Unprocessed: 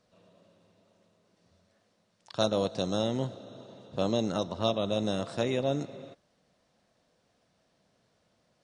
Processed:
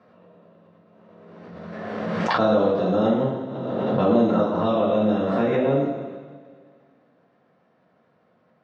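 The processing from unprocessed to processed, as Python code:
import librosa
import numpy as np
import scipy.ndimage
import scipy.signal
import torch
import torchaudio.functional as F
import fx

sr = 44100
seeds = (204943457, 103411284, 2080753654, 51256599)

y = scipy.signal.sosfilt(scipy.signal.cheby1(2, 1.0, [180.0, 1600.0], 'bandpass', fs=sr, output='sos'), x)
y = fx.rev_double_slope(y, sr, seeds[0], early_s=0.88, late_s=2.6, knee_db=-18, drr_db=-9.5)
y = fx.pre_swell(y, sr, db_per_s=24.0)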